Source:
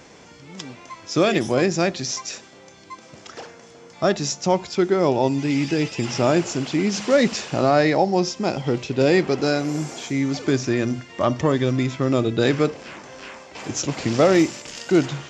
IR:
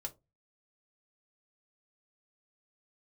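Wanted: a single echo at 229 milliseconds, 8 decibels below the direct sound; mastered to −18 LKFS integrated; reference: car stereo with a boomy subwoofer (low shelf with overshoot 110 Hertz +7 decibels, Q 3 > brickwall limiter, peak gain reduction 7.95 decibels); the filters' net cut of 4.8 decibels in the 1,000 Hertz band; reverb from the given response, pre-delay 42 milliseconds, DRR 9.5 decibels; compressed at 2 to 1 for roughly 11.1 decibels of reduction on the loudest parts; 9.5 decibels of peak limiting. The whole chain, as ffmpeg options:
-filter_complex "[0:a]equalizer=frequency=1000:width_type=o:gain=-7,acompressor=threshold=-34dB:ratio=2,alimiter=level_in=2dB:limit=-24dB:level=0:latency=1,volume=-2dB,aecho=1:1:229:0.398,asplit=2[link_01][link_02];[1:a]atrim=start_sample=2205,adelay=42[link_03];[link_02][link_03]afir=irnorm=-1:irlink=0,volume=-7.5dB[link_04];[link_01][link_04]amix=inputs=2:normalize=0,lowshelf=frequency=110:width_type=q:width=3:gain=7,volume=22dB,alimiter=limit=-9dB:level=0:latency=1"

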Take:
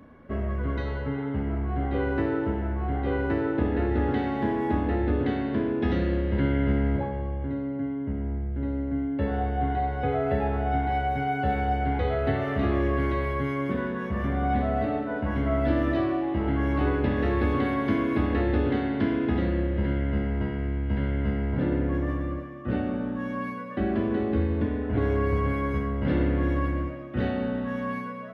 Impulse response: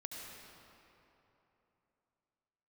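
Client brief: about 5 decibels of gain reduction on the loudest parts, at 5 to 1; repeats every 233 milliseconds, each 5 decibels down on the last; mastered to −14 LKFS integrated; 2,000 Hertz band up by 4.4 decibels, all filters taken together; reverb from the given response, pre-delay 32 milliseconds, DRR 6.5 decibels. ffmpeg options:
-filter_complex "[0:a]equalizer=frequency=2000:width_type=o:gain=5.5,acompressor=threshold=-25dB:ratio=5,aecho=1:1:233|466|699|932|1165|1398|1631:0.562|0.315|0.176|0.0988|0.0553|0.031|0.0173,asplit=2[link_01][link_02];[1:a]atrim=start_sample=2205,adelay=32[link_03];[link_02][link_03]afir=irnorm=-1:irlink=0,volume=-5dB[link_04];[link_01][link_04]amix=inputs=2:normalize=0,volume=13.5dB"

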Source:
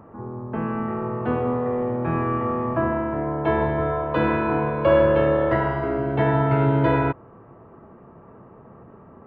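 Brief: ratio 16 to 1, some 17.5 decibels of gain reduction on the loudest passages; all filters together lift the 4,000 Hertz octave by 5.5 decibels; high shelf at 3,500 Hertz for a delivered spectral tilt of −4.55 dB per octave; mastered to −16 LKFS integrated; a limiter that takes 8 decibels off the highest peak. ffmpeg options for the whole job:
ffmpeg -i in.wav -af "highshelf=frequency=3500:gain=6,equalizer=frequency=4000:width_type=o:gain=4,acompressor=threshold=-30dB:ratio=16,volume=22dB,alimiter=limit=-6.5dB:level=0:latency=1" out.wav

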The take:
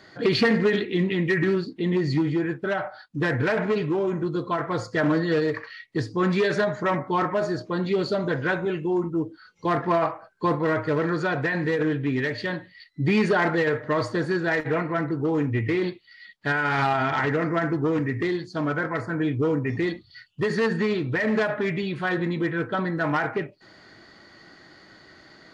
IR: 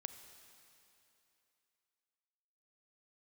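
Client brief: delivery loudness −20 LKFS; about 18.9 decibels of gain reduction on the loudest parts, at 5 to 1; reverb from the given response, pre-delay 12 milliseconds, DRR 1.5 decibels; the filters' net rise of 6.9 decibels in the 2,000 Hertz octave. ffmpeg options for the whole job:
-filter_complex "[0:a]equalizer=frequency=2000:width_type=o:gain=8.5,acompressor=threshold=-35dB:ratio=5,asplit=2[link_01][link_02];[1:a]atrim=start_sample=2205,adelay=12[link_03];[link_02][link_03]afir=irnorm=-1:irlink=0,volume=2.5dB[link_04];[link_01][link_04]amix=inputs=2:normalize=0,volume=14.5dB"

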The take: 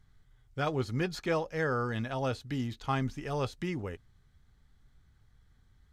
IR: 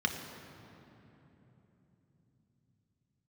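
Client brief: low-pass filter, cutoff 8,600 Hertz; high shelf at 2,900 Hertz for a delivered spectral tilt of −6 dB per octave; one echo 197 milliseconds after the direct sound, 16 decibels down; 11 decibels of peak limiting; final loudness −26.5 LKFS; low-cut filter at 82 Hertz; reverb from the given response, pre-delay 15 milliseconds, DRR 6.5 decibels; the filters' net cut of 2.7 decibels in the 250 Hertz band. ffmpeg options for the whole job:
-filter_complex "[0:a]highpass=82,lowpass=8600,equalizer=frequency=250:width_type=o:gain=-3.5,highshelf=frequency=2900:gain=-8.5,alimiter=level_in=7.5dB:limit=-24dB:level=0:latency=1,volume=-7.5dB,aecho=1:1:197:0.158,asplit=2[link_01][link_02];[1:a]atrim=start_sample=2205,adelay=15[link_03];[link_02][link_03]afir=irnorm=-1:irlink=0,volume=-14dB[link_04];[link_01][link_04]amix=inputs=2:normalize=0,volume=13.5dB"

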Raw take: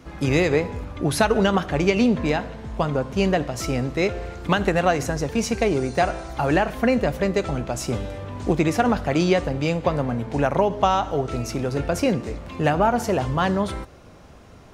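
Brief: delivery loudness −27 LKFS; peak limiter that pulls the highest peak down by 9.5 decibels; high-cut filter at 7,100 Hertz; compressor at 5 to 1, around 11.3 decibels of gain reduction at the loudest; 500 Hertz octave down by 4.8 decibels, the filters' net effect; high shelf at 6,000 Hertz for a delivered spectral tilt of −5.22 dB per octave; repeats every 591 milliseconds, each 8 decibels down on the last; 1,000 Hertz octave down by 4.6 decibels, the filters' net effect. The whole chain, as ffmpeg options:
ffmpeg -i in.wav -af "lowpass=7100,equalizer=frequency=500:width_type=o:gain=-5,equalizer=frequency=1000:width_type=o:gain=-4.5,highshelf=frequency=6000:gain=7,acompressor=threshold=-30dB:ratio=5,alimiter=level_in=2dB:limit=-24dB:level=0:latency=1,volume=-2dB,aecho=1:1:591|1182|1773|2364|2955:0.398|0.159|0.0637|0.0255|0.0102,volume=8.5dB" out.wav

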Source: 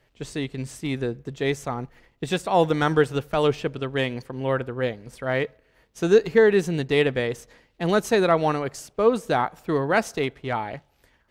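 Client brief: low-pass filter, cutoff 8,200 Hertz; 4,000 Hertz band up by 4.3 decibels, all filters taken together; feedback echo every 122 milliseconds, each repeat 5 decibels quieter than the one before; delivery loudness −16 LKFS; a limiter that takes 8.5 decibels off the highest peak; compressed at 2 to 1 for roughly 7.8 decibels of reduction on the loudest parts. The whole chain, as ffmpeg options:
ffmpeg -i in.wav -af "lowpass=8200,equalizer=frequency=4000:width_type=o:gain=5.5,acompressor=threshold=-26dB:ratio=2,alimiter=limit=-21.5dB:level=0:latency=1,aecho=1:1:122|244|366|488|610|732|854:0.562|0.315|0.176|0.0988|0.0553|0.031|0.0173,volume=15dB" out.wav

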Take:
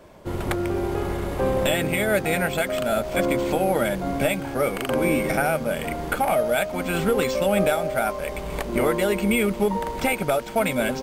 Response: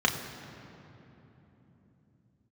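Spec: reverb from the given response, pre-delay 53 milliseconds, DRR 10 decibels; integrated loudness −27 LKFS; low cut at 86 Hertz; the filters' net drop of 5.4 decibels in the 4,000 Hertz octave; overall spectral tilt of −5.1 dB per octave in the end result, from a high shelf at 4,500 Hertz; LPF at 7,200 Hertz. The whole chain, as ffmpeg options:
-filter_complex "[0:a]highpass=86,lowpass=7200,equalizer=frequency=4000:width_type=o:gain=-9,highshelf=frequency=4500:gain=4,asplit=2[link_01][link_02];[1:a]atrim=start_sample=2205,adelay=53[link_03];[link_02][link_03]afir=irnorm=-1:irlink=0,volume=-23dB[link_04];[link_01][link_04]amix=inputs=2:normalize=0,volume=-3dB"

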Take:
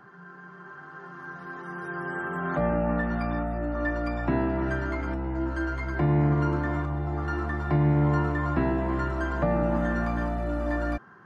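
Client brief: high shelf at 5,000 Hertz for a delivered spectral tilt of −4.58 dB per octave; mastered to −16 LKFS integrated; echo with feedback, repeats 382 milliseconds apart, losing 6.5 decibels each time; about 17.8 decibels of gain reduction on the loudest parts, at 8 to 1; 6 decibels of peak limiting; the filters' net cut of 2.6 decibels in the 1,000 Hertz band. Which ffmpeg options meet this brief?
ffmpeg -i in.wav -af "equalizer=frequency=1000:width_type=o:gain=-4,highshelf=frequency=5000:gain=8.5,acompressor=threshold=-38dB:ratio=8,alimiter=level_in=10dB:limit=-24dB:level=0:latency=1,volume=-10dB,aecho=1:1:382|764|1146|1528|1910|2292:0.473|0.222|0.105|0.0491|0.0231|0.0109,volume=25.5dB" out.wav

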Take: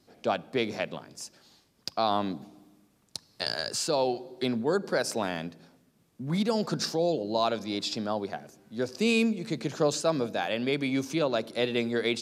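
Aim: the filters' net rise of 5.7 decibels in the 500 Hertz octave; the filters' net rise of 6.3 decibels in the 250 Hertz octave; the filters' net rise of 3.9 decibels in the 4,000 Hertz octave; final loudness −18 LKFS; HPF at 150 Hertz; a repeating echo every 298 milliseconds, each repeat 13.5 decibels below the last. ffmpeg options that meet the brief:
ffmpeg -i in.wav -af "highpass=150,equalizer=frequency=250:width_type=o:gain=7,equalizer=frequency=500:width_type=o:gain=5,equalizer=frequency=4000:width_type=o:gain=4.5,aecho=1:1:298|596:0.211|0.0444,volume=6dB" out.wav

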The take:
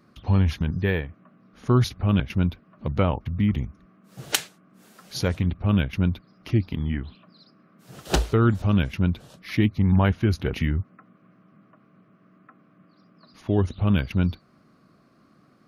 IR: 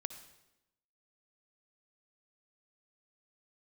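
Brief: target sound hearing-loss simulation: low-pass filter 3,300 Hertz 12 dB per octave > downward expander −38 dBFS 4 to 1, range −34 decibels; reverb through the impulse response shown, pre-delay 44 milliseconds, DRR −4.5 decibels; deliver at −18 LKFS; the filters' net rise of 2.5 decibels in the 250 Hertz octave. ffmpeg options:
-filter_complex "[0:a]equalizer=frequency=250:width_type=o:gain=3.5,asplit=2[link_01][link_02];[1:a]atrim=start_sample=2205,adelay=44[link_03];[link_02][link_03]afir=irnorm=-1:irlink=0,volume=6dB[link_04];[link_01][link_04]amix=inputs=2:normalize=0,lowpass=3300,agate=range=-34dB:threshold=-38dB:ratio=4,volume=-0.5dB"

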